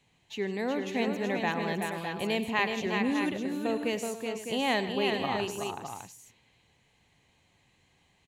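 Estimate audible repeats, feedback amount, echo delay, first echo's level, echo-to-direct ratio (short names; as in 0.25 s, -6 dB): 5, no steady repeat, 98 ms, -15.5 dB, -2.5 dB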